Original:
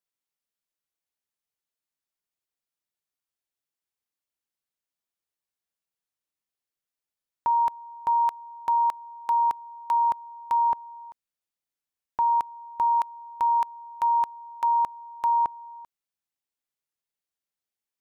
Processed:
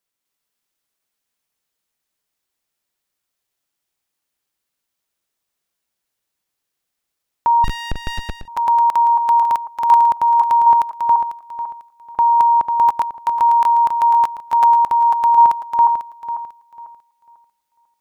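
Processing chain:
feedback delay that plays each chunk backwards 248 ms, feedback 50%, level −0.5 dB
0:07.64–0:08.48: windowed peak hold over 33 samples
level +8.5 dB

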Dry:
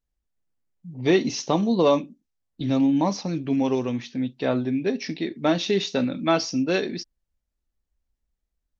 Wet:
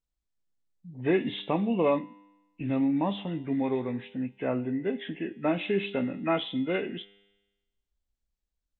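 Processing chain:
hearing-aid frequency compression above 1,300 Hz 1.5 to 1
tuned comb filter 100 Hz, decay 1.1 s, harmonics all, mix 50%

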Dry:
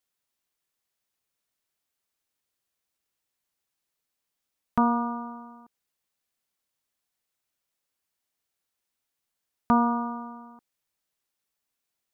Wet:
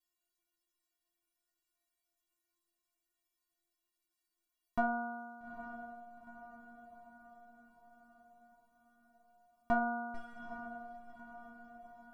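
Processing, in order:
0:10.14–0:10.54: lower of the sound and its delayed copy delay 3.4 ms
low-shelf EQ 380 Hz +7 dB
stiff-string resonator 340 Hz, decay 0.37 s, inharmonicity 0.008
on a send: feedback delay with all-pass diffusion 860 ms, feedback 54%, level −11.5 dB
on the sum: level +10.5 dB

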